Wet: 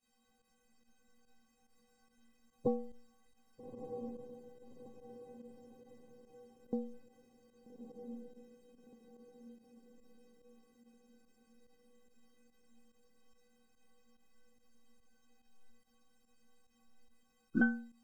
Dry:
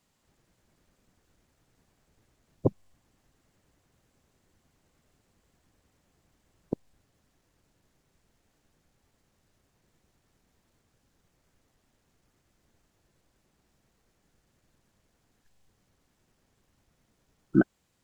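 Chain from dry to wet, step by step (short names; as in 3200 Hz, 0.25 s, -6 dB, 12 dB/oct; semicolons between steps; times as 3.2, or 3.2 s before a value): metallic resonator 230 Hz, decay 0.55 s, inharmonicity 0.03; diffused feedback echo 1.265 s, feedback 46%, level -6 dB; pump 144 bpm, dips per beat 1, -12 dB, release 66 ms; gain +12.5 dB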